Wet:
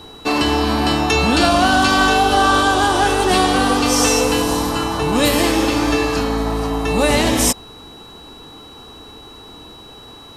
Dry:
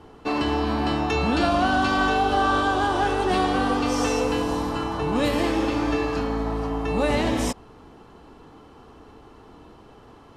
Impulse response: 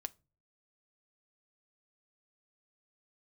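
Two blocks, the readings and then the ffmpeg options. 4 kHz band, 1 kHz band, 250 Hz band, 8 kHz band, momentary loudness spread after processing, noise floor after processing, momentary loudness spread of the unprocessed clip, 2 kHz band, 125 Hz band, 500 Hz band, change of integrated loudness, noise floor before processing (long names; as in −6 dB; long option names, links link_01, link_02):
+12.0 dB, +6.5 dB, +6.0 dB, +17.0 dB, 6 LU, −40 dBFS, 6 LU, +8.5 dB, +6.0 dB, +6.0 dB, +7.5 dB, −49 dBFS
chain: -af "aemphasis=mode=production:type=75kf,aeval=exprs='val(0)+0.00501*sin(2*PI*3900*n/s)':channel_layout=same,volume=6dB"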